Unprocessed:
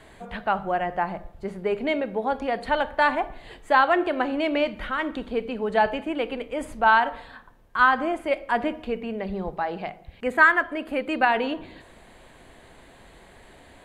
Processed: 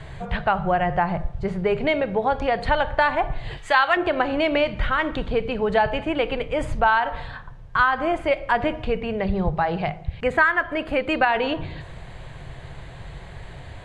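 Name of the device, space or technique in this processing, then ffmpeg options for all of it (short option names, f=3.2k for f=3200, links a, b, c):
jukebox: -filter_complex "[0:a]lowpass=6.2k,lowshelf=f=180:t=q:w=3:g=8.5,acompressor=threshold=-24dB:ratio=3,asettb=1/sr,asplit=3[a][b][c];[a]atrim=end=3.574[d];[b]atrim=start=3.57:end=3.97,asetpts=PTS-STARTPTS,afade=t=in:d=0.004:c=qsin,afade=t=out:st=0.396:d=0.004:c=qsin,tiltshelf=f=970:g=-8[e];[c]atrim=start=3.966[f];[d][e]acrossfade=d=0.004:c1=hsin:c2=qsin[g];[g][f]acrossfade=d=0.004:c1=qsin:c2=hsin,volume=7dB"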